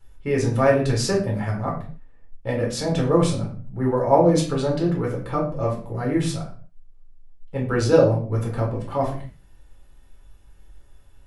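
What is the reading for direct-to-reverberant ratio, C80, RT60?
-3.0 dB, 11.5 dB, 0.45 s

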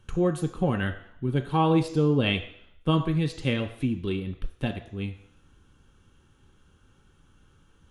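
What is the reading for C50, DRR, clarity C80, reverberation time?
11.5 dB, 6.0 dB, 14.5 dB, 0.70 s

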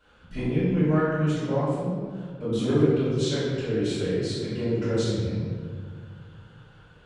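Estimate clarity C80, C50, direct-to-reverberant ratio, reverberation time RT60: -0.5 dB, -2.5 dB, -14.5 dB, 2.0 s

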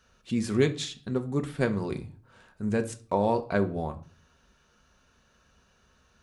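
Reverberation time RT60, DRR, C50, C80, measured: 0.40 s, 6.0 dB, 16.5 dB, 21.0 dB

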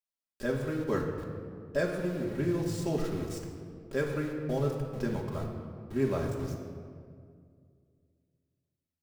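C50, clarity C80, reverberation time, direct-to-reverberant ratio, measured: 4.0 dB, 5.5 dB, 2.2 s, -1.5 dB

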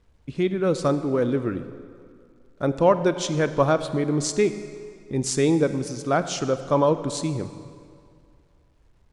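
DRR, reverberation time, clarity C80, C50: 11.0 dB, 2.3 s, 12.5 dB, 11.5 dB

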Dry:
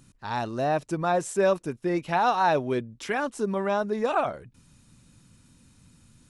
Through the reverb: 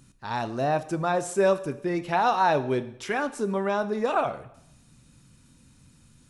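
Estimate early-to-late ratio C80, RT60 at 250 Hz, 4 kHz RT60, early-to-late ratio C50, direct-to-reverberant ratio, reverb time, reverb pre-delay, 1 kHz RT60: 17.5 dB, 0.85 s, 0.70 s, 15.5 dB, 11.0 dB, 0.75 s, 4 ms, 0.75 s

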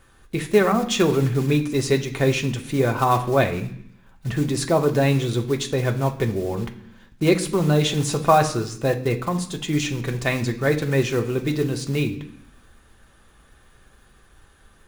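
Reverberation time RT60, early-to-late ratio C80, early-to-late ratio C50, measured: 0.65 s, 15.5 dB, 12.5 dB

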